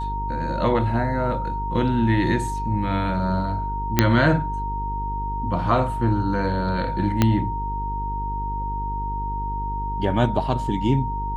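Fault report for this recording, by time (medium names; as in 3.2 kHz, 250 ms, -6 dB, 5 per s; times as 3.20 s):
buzz 50 Hz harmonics 9 -29 dBFS
whine 930 Hz -27 dBFS
3.99 s: pop 0 dBFS
7.22 s: pop -4 dBFS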